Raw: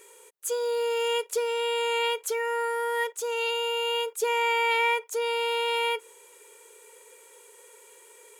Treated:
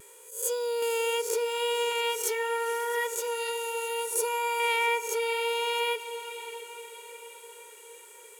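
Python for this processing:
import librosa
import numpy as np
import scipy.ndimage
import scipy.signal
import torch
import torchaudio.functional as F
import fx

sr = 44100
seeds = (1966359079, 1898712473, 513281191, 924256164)

y = fx.spec_swells(x, sr, rise_s=0.49)
y = fx.high_shelf(y, sr, hz=12000.0, db=8.5)
y = y + 10.0 ** (-16.5 / 20.0) * np.pad(y, (int(659 * sr / 1000.0), 0))[:len(y)]
y = fx.vibrato(y, sr, rate_hz=0.72, depth_cents=22.0)
y = fx.graphic_eq_31(y, sr, hz=(400, 2000, 3150, 10000), db=(-6, -11, -9, 8), at=(3.27, 4.6))
y = fx.echo_diffused(y, sr, ms=514, feedback_pct=61, wet_db=-13)
y = fx.band_squash(y, sr, depth_pct=70, at=(0.82, 1.92))
y = y * 10.0 ** (-2.5 / 20.0)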